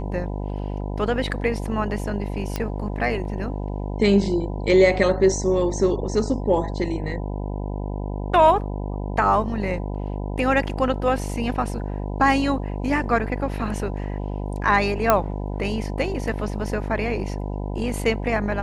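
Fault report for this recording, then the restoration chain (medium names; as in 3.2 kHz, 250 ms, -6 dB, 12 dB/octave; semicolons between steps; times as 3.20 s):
buzz 50 Hz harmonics 20 -28 dBFS
2.56 s: pop -11 dBFS
15.10 s: pop -3 dBFS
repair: de-click; de-hum 50 Hz, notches 20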